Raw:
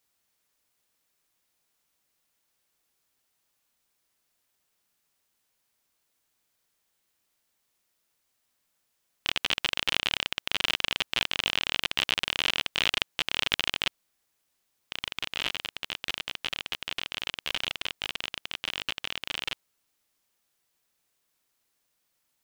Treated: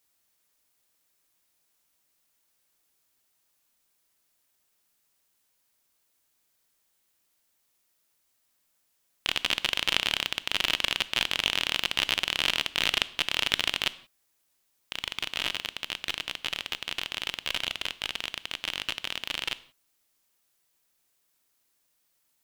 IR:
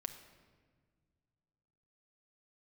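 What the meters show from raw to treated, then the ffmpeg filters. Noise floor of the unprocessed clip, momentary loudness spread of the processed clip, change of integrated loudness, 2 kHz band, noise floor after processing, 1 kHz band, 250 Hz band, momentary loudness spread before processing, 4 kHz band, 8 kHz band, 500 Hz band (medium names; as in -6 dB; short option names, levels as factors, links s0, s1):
-77 dBFS, 8 LU, +1.0 dB, +0.5 dB, -73 dBFS, +0.5 dB, +1.0 dB, 8 LU, +1.0 dB, +2.5 dB, +0.5 dB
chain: -filter_complex "[0:a]asplit=2[s0][s1];[s1]highshelf=f=5500:g=9[s2];[1:a]atrim=start_sample=2205,afade=t=out:st=0.39:d=0.01,atrim=end_sample=17640,asetrate=79380,aresample=44100[s3];[s2][s3]afir=irnorm=-1:irlink=0,volume=1.41[s4];[s0][s4]amix=inputs=2:normalize=0,volume=0.668"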